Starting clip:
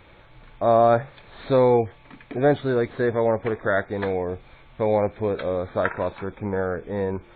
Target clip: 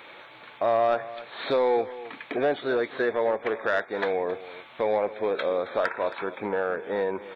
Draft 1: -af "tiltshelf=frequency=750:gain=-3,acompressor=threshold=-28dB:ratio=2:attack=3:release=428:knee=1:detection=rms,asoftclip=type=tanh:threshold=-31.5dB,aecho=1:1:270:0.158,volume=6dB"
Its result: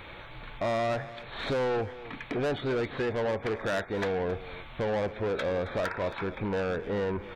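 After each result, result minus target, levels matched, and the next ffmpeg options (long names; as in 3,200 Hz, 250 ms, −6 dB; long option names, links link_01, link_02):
soft clipping: distortion +12 dB; 250 Hz band +4.5 dB
-af "tiltshelf=frequency=750:gain=-3,acompressor=threshold=-28dB:ratio=2:attack=3:release=428:knee=1:detection=rms,asoftclip=type=tanh:threshold=-20dB,aecho=1:1:270:0.158,volume=6dB"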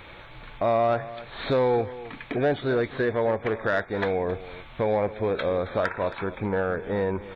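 250 Hz band +4.0 dB
-af "highpass=320,tiltshelf=frequency=750:gain=-3,acompressor=threshold=-28dB:ratio=2:attack=3:release=428:knee=1:detection=rms,asoftclip=type=tanh:threshold=-20dB,aecho=1:1:270:0.158,volume=6dB"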